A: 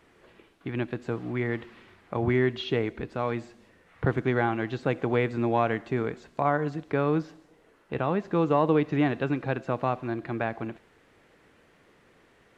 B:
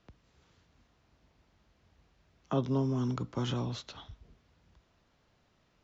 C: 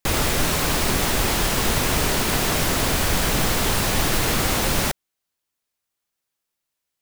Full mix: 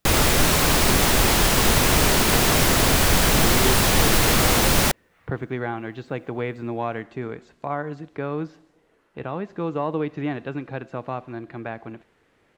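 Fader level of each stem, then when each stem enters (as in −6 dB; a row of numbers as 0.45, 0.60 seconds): −3.0, −8.0, +3.0 decibels; 1.25, 0.00, 0.00 seconds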